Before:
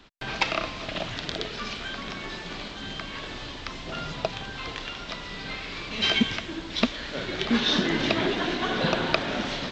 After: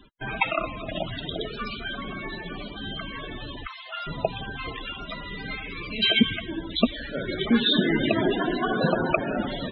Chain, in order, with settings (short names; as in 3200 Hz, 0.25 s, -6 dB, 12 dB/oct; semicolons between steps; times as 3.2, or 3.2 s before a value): 3.67–4.07 HPF 900 Hz 12 dB/oct; loudest bins only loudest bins 32; gain +3.5 dB